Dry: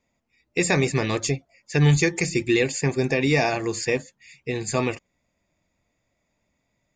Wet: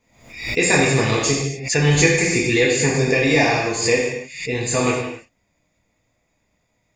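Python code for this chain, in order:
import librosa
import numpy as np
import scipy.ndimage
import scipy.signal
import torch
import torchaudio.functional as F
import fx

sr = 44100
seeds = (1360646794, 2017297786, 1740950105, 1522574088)

y = fx.hpss(x, sr, part='percussive', gain_db=4)
y = fx.rev_gated(y, sr, seeds[0], gate_ms=320, shape='falling', drr_db=-4.0)
y = fx.pre_swell(y, sr, db_per_s=91.0)
y = y * 10.0 ** (-2.0 / 20.0)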